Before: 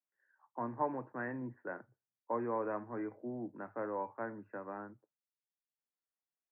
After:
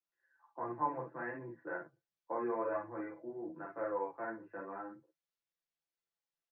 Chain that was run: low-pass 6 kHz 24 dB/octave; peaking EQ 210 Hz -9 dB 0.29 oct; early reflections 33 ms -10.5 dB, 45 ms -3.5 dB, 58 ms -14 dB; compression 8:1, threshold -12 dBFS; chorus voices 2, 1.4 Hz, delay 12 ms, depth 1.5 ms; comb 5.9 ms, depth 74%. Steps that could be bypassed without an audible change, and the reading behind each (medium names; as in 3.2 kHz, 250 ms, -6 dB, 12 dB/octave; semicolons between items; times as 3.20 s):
low-pass 6 kHz: input has nothing above 2 kHz; compression, threshold -12 dBFS: peak at its input -21.0 dBFS